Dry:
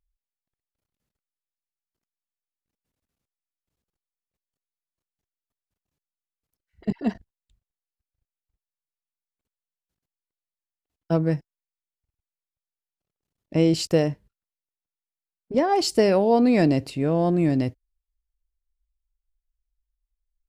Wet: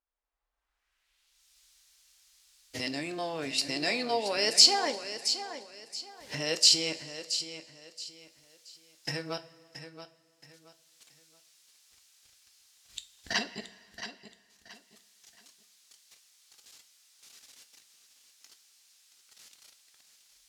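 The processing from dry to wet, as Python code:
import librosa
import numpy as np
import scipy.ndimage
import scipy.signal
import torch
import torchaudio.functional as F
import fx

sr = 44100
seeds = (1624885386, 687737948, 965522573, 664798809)

p1 = x[::-1].copy()
p2 = fx.recorder_agc(p1, sr, target_db=-12.5, rise_db_per_s=19.0, max_gain_db=30)
p3 = fx.filter_sweep_bandpass(p2, sr, from_hz=890.0, to_hz=5300.0, start_s=0.55, end_s=1.44, q=1.1)
p4 = fx.quant_float(p3, sr, bits=6)
p5 = p4 + fx.echo_feedback(p4, sr, ms=675, feedback_pct=30, wet_db=-11, dry=0)
p6 = fx.rev_double_slope(p5, sr, seeds[0], early_s=0.27, late_s=2.2, knee_db=-18, drr_db=8.0)
y = F.gain(torch.from_numpy(p6), 8.0).numpy()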